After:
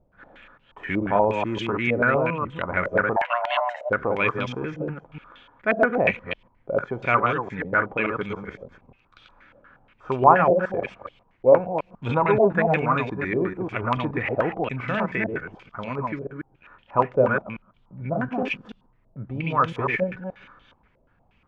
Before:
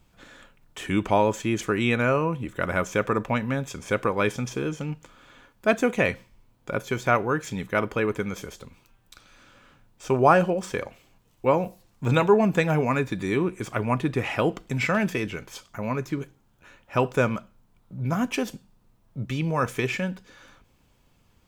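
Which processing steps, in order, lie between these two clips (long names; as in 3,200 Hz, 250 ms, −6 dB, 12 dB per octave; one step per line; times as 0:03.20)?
delay that plays each chunk backwards 144 ms, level −3 dB
0:03.16–0:03.90: frequency shifter +470 Hz
low-pass on a step sequencer 8.4 Hz 600–3,200 Hz
level −4 dB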